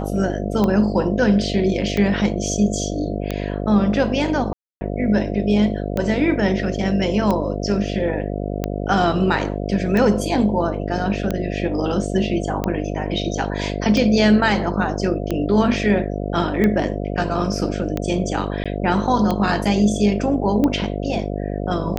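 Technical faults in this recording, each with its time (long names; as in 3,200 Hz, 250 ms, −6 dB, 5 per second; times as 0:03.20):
mains buzz 50 Hz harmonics 14 −25 dBFS
scratch tick 45 rpm −9 dBFS
0:04.53–0:04.81: drop-out 280 ms
0:18.64–0:18.66: drop-out 16 ms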